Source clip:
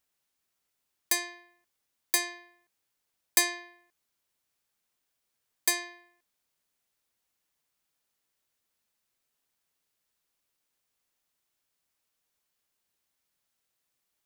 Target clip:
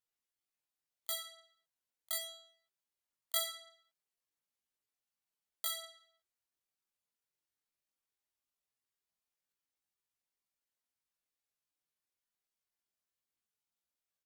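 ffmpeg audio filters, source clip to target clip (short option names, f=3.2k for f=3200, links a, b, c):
-af "asetrate=83250,aresample=44100,atempo=0.529732,flanger=delay=16.5:depth=7.5:speed=0.21,volume=-6dB"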